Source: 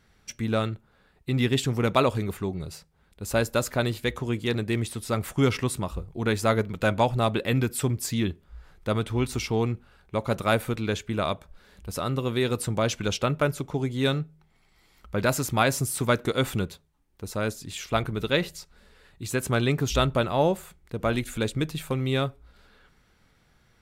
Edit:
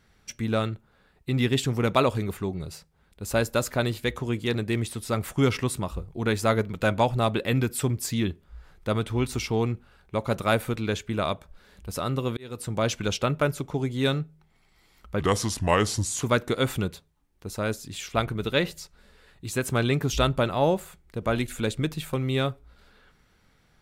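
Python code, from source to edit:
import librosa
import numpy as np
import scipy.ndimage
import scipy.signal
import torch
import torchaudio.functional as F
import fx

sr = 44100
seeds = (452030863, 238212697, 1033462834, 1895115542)

y = fx.edit(x, sr, fx.fade_in_span(start_s=12.37, length_s=0.47),
    fx.speed_span(start_s=15.2, length_s=0.8, speed=0.78), tone=tone)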